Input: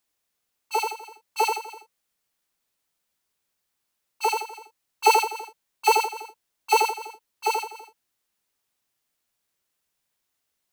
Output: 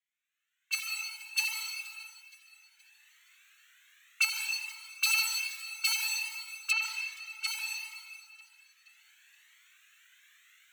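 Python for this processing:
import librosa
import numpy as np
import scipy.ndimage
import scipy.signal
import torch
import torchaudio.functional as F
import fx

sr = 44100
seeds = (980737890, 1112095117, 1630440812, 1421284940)

y = fx.wiener(x, sr, points=9)
y = fx.recorder_agc(y, sr, target_db=-13.0, rise_db_per_s=19.0, max_gain_db=30)
y = fx.env_lowpass_down(y, sr, base_hz=2800.0, full_db=-18.0, at=(6.7, 7.46), fade=0.02)
y = scipy.signal.sosfilt(scipy.signal.butter(6, 1600.0, 'highpass', fs=sr, output='sos'), y)
y = fx.echo_feedback(y, sr, ms=472, feedback_pct=47, wet_db=-19)
y = fx.rev_plate(y, sr, seeds[0], rt60_s=1.9, hf_ratio=0.85, predelay_ms=115, drr_db=3.0)
y = fx.comb_cascade(y, sr, direction='rising', hz=0.63)
y = F.gain(torch.from_numpy(y), 2.0).numpy()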